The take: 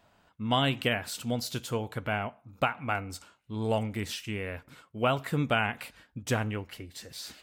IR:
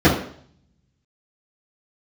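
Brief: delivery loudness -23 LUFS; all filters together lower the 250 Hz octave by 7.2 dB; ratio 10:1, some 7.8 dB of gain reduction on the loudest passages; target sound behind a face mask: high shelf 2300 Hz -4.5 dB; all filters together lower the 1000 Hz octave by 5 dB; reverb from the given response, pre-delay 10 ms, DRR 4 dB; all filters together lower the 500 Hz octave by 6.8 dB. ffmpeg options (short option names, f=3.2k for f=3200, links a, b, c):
-filter_complex "[0:a]equalizer=f=250:t=o:g=-7.5,equalizer=f=500:t=o:g=-5.5,equalizer=f=1k:t=o:g=-3.5,acompressor=threshold=-32dB:ratio=10,asplit=2[a][b];[1:a]atrim=start_sample=2205,adelay=10[c];[b][c]afir=irnorm=-1:irlink=0,volume=-28dB[d];[a][d]amix=inputs=2:normalize=0,highshelf=f=2.3k:g=-4.5,volume=13.5dB"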